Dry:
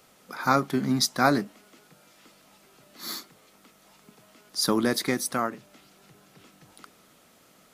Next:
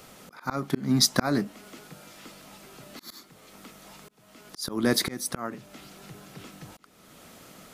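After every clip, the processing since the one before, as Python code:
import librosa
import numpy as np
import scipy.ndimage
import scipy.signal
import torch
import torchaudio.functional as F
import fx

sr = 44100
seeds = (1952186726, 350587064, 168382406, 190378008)

y = fx.auto_swell(x, sr, attack_ms=483.0)
y = fx.low_shelf(y, sr, hz=190.0, db=5.5)
y = y * librosa.db_to_amplitude(8.0)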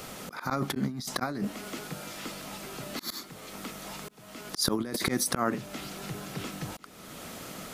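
y = fx.over_compress(x, sr, threshold_db=-33.0, ratio=-1.0)
y = y * librosa.db_to_amplitude(2.5)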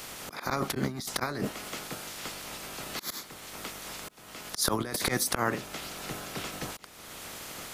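y = fx.spec_clip(x, sr, under_db=13)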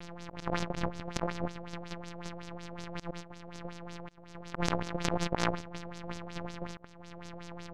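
y = np.r_[np.sort(x[:len(x) // 256 * 256].reshape(-1, 256), axis=1).ravel(), x[len(x) // 256 * 256:]]
y = np.maximum(y, 0.0)
y = fx.filter_lfo_lowpass(y, sr, shape='sine', hz=5.4, low_hz=570.0, high_hz=6700.0, q=2.5)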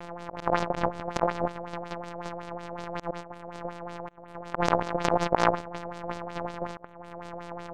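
y = fx.wiener(x, sr, points=9)
y = fx.peak_eq(y, sr, hz=780.0, db=13.0, octaves=2.5)
y = y * librosa.db_to_amplitude(-1.5)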